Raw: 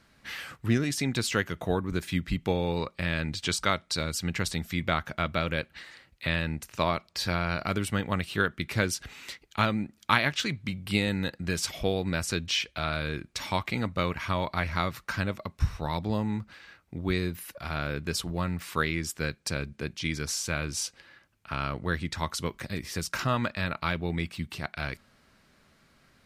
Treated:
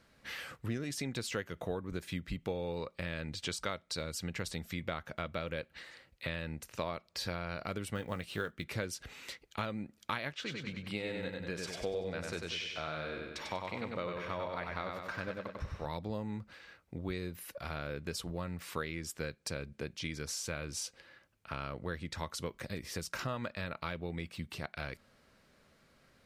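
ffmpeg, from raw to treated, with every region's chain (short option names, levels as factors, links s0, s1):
-filter_complex "[0:a]asettb=1/sr,asplit=3[s0][s1][s2];[s0]atrim=end=7.954[s3];[s1]atrim=start=7.95:end=8.64,asetpts=PTS-STARTPTS,afade=t=in:d=0.004:c=qsin,afade=t=out:st=0.686:d=0.004:c=qsin,acrusher=bits=7:mode=log:mix=0:aa=0.000001,asplit=2[s4][s5];[s5]adelay=18,volume=0.211[s6];[s4][s6]amix=inputs=2:normalize=0,atrim=end_sample=30429[s7];[s2]atrim=start=8.636[s8];[s3][s7]acrossfade=d=0.004:c1=hsin:c2=qsin[s9];[s9][s8]acrossfade=d=0.004:c1=qsin:c2=hsin,asettb=1/sr,asplit=3[s10][s11][s12];[s10]atrim=end=10.334[s13];[s11]atrim=start=10.33:end=15.86,asetpts=PTS-STARTPTS,afade=t=in:d=0.004:c=qsin,afade=t=out:st=5.526:d=0.004:c=qsin,lowpass=f=2700:p=1,lowshelf=f=230:g=-8.5,aecho=1:1:96|192|288|384|480|576:0.631|0.309|0.151|0.0742|0.0364|0.0178,atrim=end_sample=243873[s14];[s12]atrim=start=15.856[s15];[s13][s14]acrossfade=d=0.004:c1=hsin:c2=qsin[s16];[s16][s15]acrossfade=d=0.004:c1=qsin:c2=hsin,equalizer=f=510:t=o:w=0.55:g=6.5,acompressor=threshold=0.0251:ratio=2.5,volume=0.596"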